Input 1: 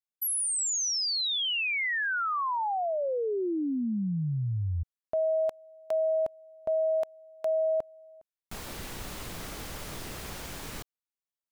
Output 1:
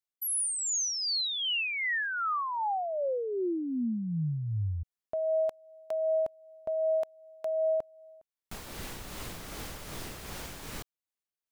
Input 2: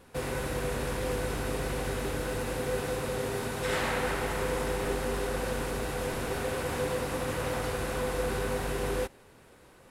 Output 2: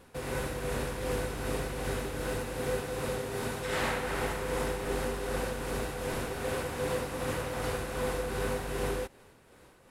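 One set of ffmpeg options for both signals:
ffmpeg -i in.wav -af "tremolo=f=2.6:d=0.4" out.wav

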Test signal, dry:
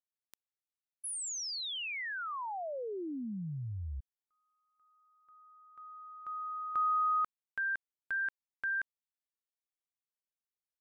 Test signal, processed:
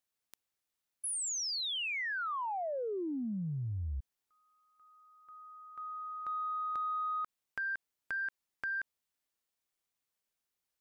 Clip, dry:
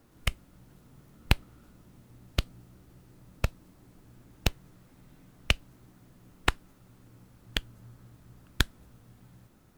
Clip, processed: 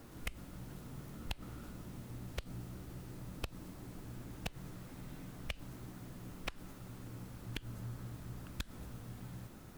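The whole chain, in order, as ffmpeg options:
ffmpeg -i in.wav -af "acompressor=threshold=-41dB:ratio=10:attack=2.2:release=100:knee=6:detection=peak,asoftclip=type=tanh:threshold=-31.5dB,volume=7.5dB" out.wav

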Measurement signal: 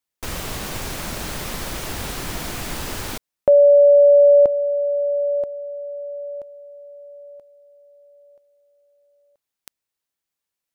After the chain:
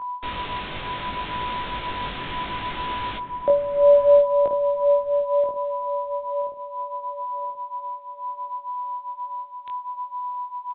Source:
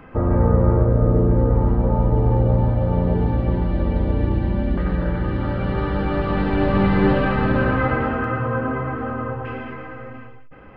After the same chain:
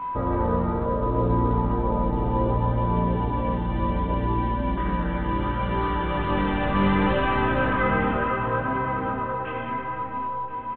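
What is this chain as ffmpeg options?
ffmpeg -i in.wav -filter_complex "[0:a]highshelf=frequency=2200:gain=9.5,bandreject=frequency=228.4:width_type=h:width=4,bandreject=frequency=456.8:width_type=h:width=4,bandreject=frequency=685.2:width_type=h:width=4,bandreject=frequency=913.6:width_type=h:width=4,bandreject=frequency=1142:width_type=h:width=4,bandreject=frequency=1370.4:width_type=h:width=4,bandreject=frequency=1598.8:width_type=h:width=4,bandreject=frequency=1827.2:width_type=h:width=4,bandreject=frequency=2055.6:width_type=h:width=4,aeval=exprs='val(0)+0.0562*sin(2*PI*990*n/s)':channel_layout=same,acrossover=split=160[link_01][link_02];[link_01]acompressor=threshold=-32dB:ratio=1.5:release=816:knee=2.83:detection=peak[link_03];[link_03][link_02]amix=inputs=2:normalize=0,flanger=delay=18:depth=3.8:speed=0.68,asplit=2[link_04][link_05];[link_05]adelay=1031,lowpass=frequency=970:poles=1,volume=-7.5dB,asplit=2[link_06][link_07];[link_07]adelay=1031,lowpass=frequency=970:poles=1,volume=0.31,asplit=2[link_08][link_09];[link_09]adelay=1031,lowpass=frequency=970:poles=1,volume=0.31,asplit=2[link_10][link_11];[link_11]adelay=1031,lowpass=frequency=970:poles=1,volume=0.31[link_12];[link_04][link_06][link_08][link_10][link_12]amix=inputs=5:normalize=0,volume=-1.5dB" -ar 8000 -c:a pcm_alaw out.wav

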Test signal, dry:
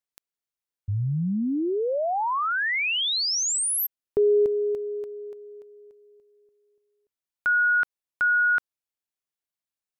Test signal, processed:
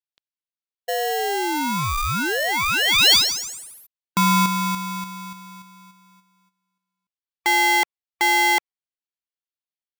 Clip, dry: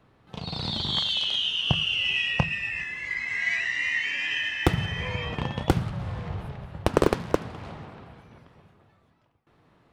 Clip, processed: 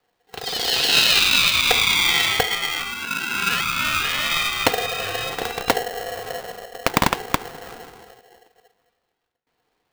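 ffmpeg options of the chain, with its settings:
ffmpeg -i in.wav -af "afftdn=noise_reduction=14:noise_floor=-42,lowpass=frequency=3800:width_type=q:width=3.3,aeval=exprs='val(0)*sgn(sin(2*PI*600*n/s))':channel_layout=same,volume=2dB" out.wav

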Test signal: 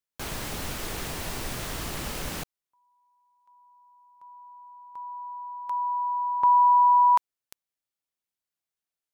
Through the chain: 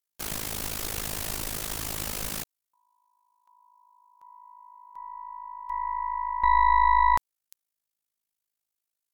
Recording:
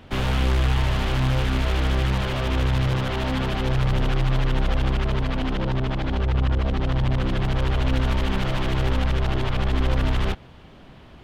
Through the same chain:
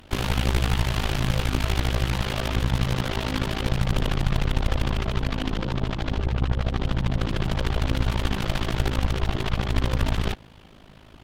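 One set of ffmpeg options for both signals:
ffmpeg -i in.wav -af "aemphasis=mode=production:type=cd,aeval=exprs='0.316*(cos(1*acos(clip(val(0)/0.316,-1,1)))-cos(1*PI/2))+0.0447*(cos(4*acos(clip(val(0)/0.316,-1,1)))-cos(4*PI/2))':channel_layout=same,tremolo=f=53:d=0.857,volume=1dB" out.wav

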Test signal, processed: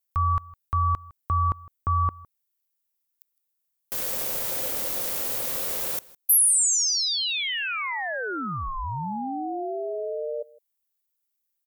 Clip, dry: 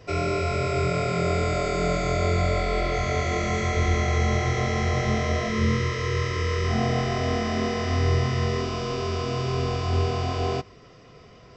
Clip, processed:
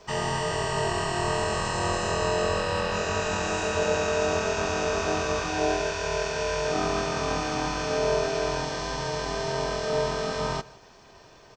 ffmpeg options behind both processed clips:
ffmpeg -i in.wav -af "aeval=exprs='val(0)*sin(2*PI*530*n/s)':channel_layout=same,aemphasis=mode=production:type=50fm,aecho=1:1:159:0.0794" out.wav

